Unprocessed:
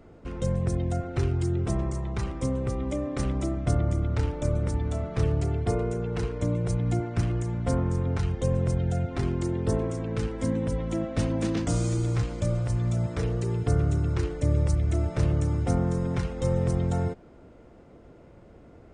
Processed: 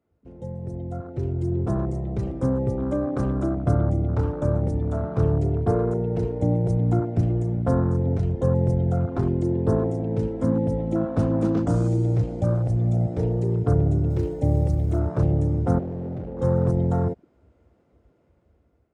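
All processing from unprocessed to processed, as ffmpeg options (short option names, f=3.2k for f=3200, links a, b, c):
-filter_complex "[0:a]asettb=1/sr,asplit=3[a][b][c];[a]atrim=end=14.104[d];[b]atrim=start=14.1:end=14.99,asetpts=PTS-STARTPTS,afade=t=in:d=0.004:c=qsin,afade=t=out:st=0.886:d=0.004:c=qsin,acrossover=split=5000[e][f];[f]acompressor=threshold=-56dB:ratio=4:attack=1:release=60[g];[e][g]amix=inputs=2:normalize=0,aemphasis=mode=production:type=50fm,acrusher=bits=8:mode=log:mix=0:aa=0.000001[h];[c]atrim=start=14.986[i];[d][h]acrossfade=d=0.004:c1=hsin:c2=qsin[j];[j][i]acrossfade=d=0.004:c1=qsin:c2=hsin,asettb=1/sr,asplit=3[k][l][m];[k]atrim=end=15.794[n];[l]atrim=start=15.79:end=16.39,asetpts=PTS-STARTPTS,afade=t=in:d=0.004:c=qsin,afade=t=out:st=0.596:d=0.004:c=qsin,lowpass=1.9k,asoftclip=type=hard:threshold=-33dB[o];[m]atrim=start=16.386[p];[n][o]acrossfade=d=0.004:c1=hsin:c2=qsin[q];[q][p]acrossfade=d=0.004:c1=qsin:c2=hsin,afwtdn=0.02,highpass=80,dynaudnorm=f=570:g=5:m=14dB,volume=-6.5dB"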